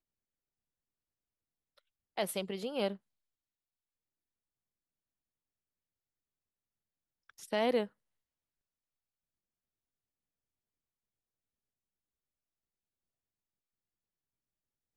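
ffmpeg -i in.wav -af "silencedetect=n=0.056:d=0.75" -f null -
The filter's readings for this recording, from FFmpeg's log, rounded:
silence_start: 0.00
silence_end: 2.18 | silence_duration: 2.18
silence_start: 2.88
silence_end: 7.53 | silence_duration: 4.65
silence_start: 7.81
silence_end: 14.96 | silence_duration: 7.15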